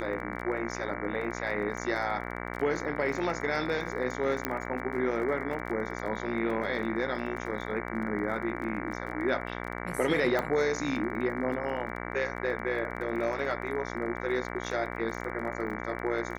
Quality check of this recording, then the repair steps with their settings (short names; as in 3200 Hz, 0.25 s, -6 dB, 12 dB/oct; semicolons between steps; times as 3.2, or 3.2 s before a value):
buzz 60 Hz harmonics 38 -37 dBFS
crackle 23/s -38 dBFS
4.45 pop -13 dBFS
10.39 pop -16 dBFS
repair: de-click; de-hum 60 Hz, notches 38